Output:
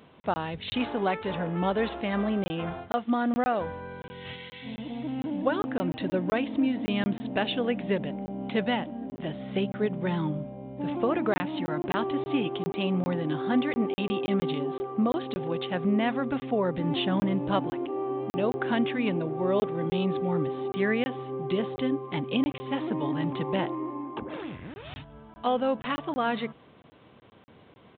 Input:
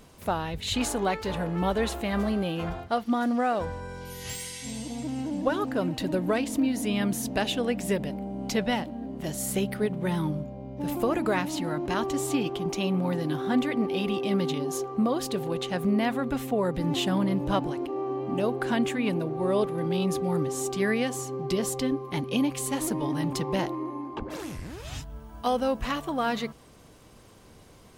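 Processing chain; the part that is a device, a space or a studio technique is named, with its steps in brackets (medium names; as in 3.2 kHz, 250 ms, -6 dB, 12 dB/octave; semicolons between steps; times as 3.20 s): call with lost packets (high-pass 120 Hz 12 dB/octave; resampled via 8 kHz; lost packets of 20 ms random)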